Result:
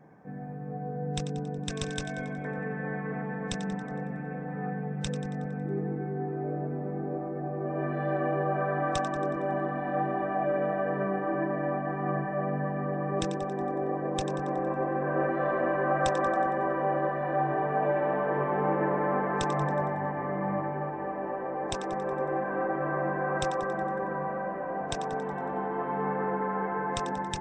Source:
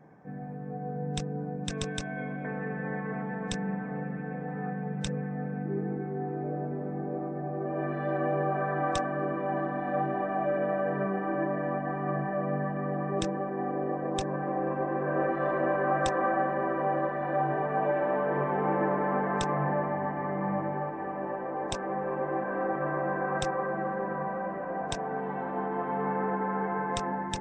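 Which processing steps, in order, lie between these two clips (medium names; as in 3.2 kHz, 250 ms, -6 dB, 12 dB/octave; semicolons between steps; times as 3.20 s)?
two-band feedback delay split 810 Hz, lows 197 ms, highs 92 ms, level -11 dB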